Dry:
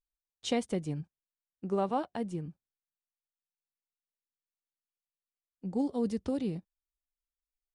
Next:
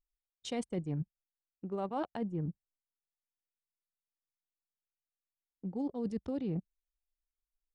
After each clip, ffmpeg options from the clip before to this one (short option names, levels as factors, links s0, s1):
-af "anlmdn=0.1,areverse,acompressor=threshold=0.01:ratio=12,areverse,volume=2.37"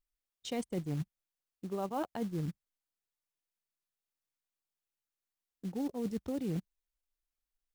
-af "acrusher=bits=5:mode=log:mix=0:aa=0.000001"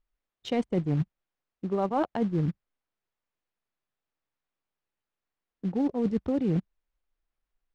-af "adynamicsmooth=sensitivity=4:basefreq=2700,volume=2.82"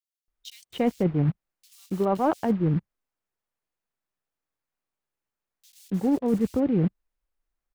-filter_complex "[0:a]asplit=2[s0][s1];[s1]acrusher=bits=6:mix=0:aa=0.000001,volume=0.531[s2];[s0][s2]amix=inputs=2:normalize=0,acrossover=split=3400[s3][s4];[s3]adelay=280[s5];[s5][s4]amix=inputs=2:normalize=0"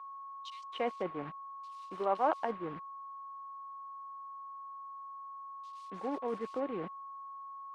-af "aeval=exprs='val(0)+0.00891*sin(2*PI*1100*n/s)':c=same,highpass=630,lowpass=3900,volume=0.794" -ar 48000 -c:a libopus -b:a 32k